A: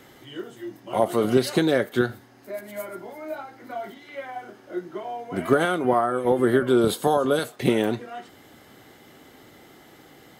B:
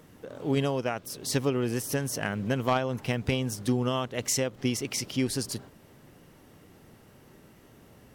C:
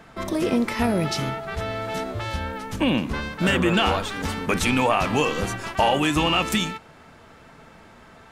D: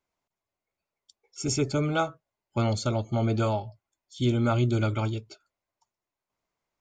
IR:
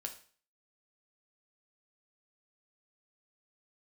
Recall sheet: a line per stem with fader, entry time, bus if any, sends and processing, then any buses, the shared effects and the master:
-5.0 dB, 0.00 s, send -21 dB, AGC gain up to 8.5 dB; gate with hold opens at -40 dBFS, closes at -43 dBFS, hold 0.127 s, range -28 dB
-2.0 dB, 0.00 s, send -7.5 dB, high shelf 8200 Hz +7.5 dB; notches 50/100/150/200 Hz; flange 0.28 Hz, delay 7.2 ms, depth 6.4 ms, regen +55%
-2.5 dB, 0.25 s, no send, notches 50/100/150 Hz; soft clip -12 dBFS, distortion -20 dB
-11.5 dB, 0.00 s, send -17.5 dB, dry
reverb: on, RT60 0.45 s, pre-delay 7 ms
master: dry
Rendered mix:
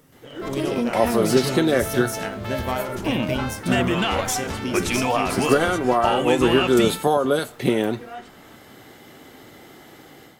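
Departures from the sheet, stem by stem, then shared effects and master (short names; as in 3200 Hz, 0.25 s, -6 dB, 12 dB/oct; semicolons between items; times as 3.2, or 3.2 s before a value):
stem C: missing soft clip -12 dBFS, distortion -20 dB; stem D -11.5 dB -> -17.5 dB; reverb return +7.5 dB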